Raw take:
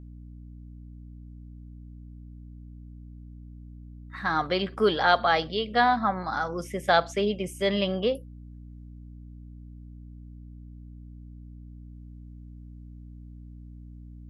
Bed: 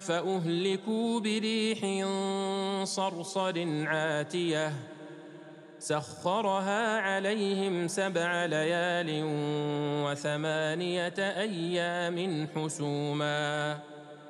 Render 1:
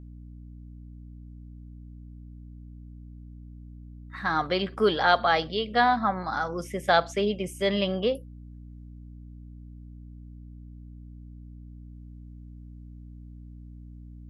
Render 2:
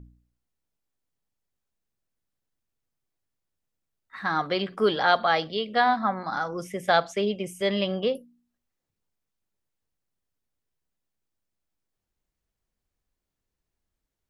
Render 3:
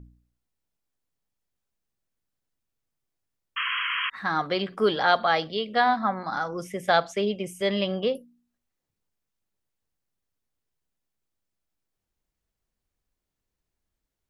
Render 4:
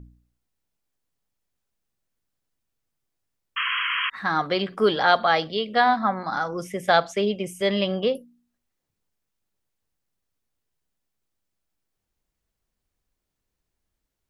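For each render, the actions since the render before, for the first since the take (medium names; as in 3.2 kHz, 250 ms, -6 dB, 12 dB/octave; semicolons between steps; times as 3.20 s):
no audible change
de-hum 60 Hz, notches 5
3.56–4.10 s: painted sound noise 980–3300 Hz -28 dBFS
trim +2.5 dB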